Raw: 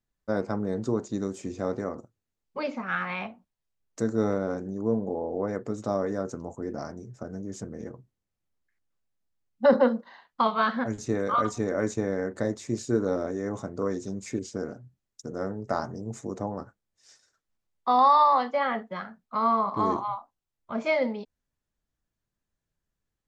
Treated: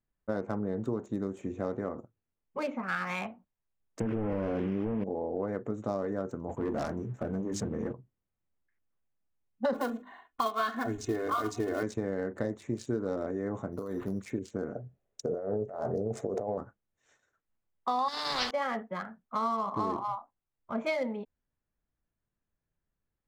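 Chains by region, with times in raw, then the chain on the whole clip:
4–5.04 delta modulation 16 kbps, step -42 dBFS + fast leveller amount 100%
6.49–7.93 notches 50/100/150/200/250/300 Hz + sample leveller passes 2
9.74–11.83 block floating point 5-bit + notches 50/100/150/200/250/300 Hz + comb 2.8 ms, depth 81%
13.72–14.22 negative-ratio compressor -33 dBFS + careless resampling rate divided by 8×, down none, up hold
14.75–16.58 band shelf 540 Hz +11.5 dB 1.1 oct + negative-ratio compressor -30 dBFS
18.08–18.51 negative-ratio compressor -28 dBFS + spectral compressor 4:1
whole clip: Wiener smoothing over 9 samples; dynamic EQ 4800 Hz, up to +5 dB, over -49 dBFS, Q 1.2; compressor 4:1, threshold -27 dBFS; gain -1 dB

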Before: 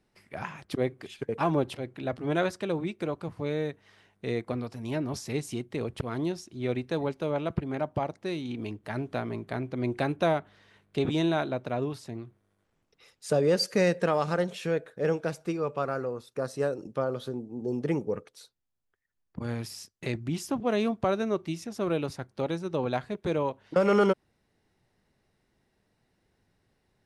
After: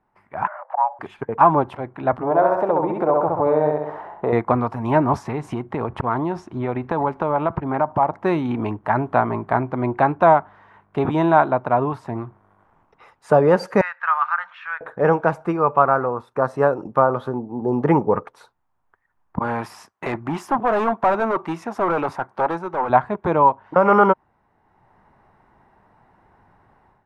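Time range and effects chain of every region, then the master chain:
0.47–0.99 LPF 1300 Hz 24 dB/oct + compressor 2:1, threshold -45 dBFS + frequency shift +450 Hz
2.23–4.33 EQ curve 200 Hz 0 dB, 600 Hz +13 dB, 1300 Hz +2 dB, 2500 Hz -5 dB + feedback echo 66 ms, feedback 38%, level -3.5 dB + compressor 2:1, threshold -37 dBFS
5.23–8.2 high shelf 9900 Hz -10.5 dB + compressor 4:1, threshold -34 dBFS
13.81–14.81 elliptic band-pass 1300–8900 Hz, stop band 50 dB + air absorption 290 m
19.39–22.9 HPF 440 Hz 6 dB/oct + hard clip -32.5 dBFS
whole clip: EQ curve 510 Hz 0 dB, 930 Hz +15 dB, 4400 Hz -17 dB; AGC gain up to 14 dB; gain -1 dB

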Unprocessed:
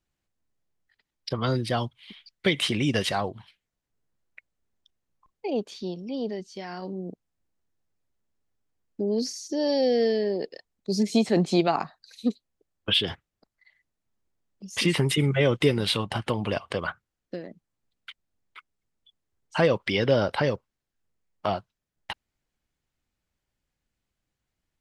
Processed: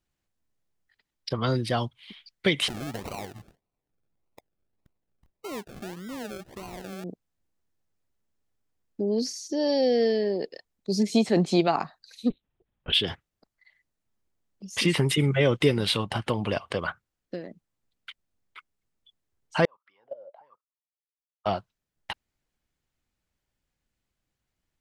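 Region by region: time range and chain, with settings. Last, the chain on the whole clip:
2.68–7.04 compressor 2.5:1, threshold -36 dBFS + decimation with a swept rate 36×, swing 60% 1.7 Hz
12.3–12.93 compressor 1.5:1, threshold -37 dBFS + LPC vocoder at 8 kHz whisper
19.65–21.46 level quantiser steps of 18 dB + low shelf 500 Hz -4 dB + wah 1.3 Hz 530–1300 Hz, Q 15
whole clip: dry

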